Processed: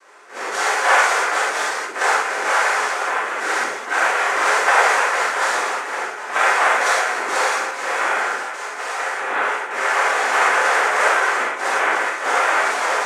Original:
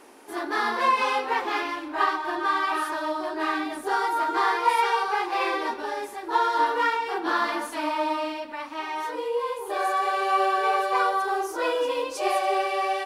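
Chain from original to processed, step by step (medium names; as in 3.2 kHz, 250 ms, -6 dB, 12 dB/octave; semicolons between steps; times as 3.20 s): low-pass 2.2 kHz; noise-vocoded speech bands 3; Bessel high-pass 570 Hz, order 4; gated-style reverb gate 140 ms flat, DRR -7.5 dB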